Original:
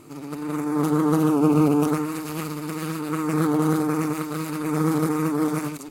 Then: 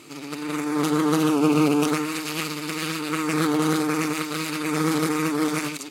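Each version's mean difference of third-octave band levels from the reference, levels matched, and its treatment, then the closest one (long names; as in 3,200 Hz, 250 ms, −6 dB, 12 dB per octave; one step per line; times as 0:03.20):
4.5 dB: meter weighting curve D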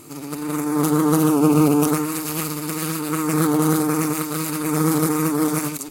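3.0 dB: high-shelf EQ 4,600 Hz +11.5 dB
level +2.5 dB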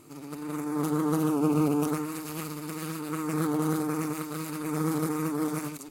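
1.5 dB: high-shelf EQ 4,700 Hz +5.5 dB
level −6.5 dB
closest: third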